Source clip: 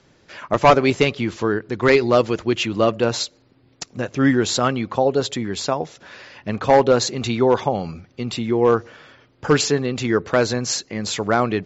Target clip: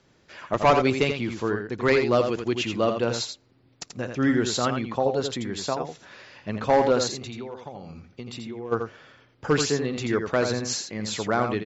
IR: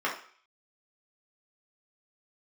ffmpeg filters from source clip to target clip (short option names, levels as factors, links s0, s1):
-filter_complex "[0:a]asplit=3[s0][s1][s2];[s0]afade=t=out:st=7.14:d=0.02[s3];[s1]acompressor=threshold=0.0398:ratio=10,afade=t=in:st=7.14:d=0.02,afade=t=out:st=8.71:d=0.02[s4];[s2]afade=t=in:st=8.71:d=0.02[s5];[s3][s4][s5]amix=inputs=3:normalize=0,aecho=1:1:84:0.473,volume=0.501"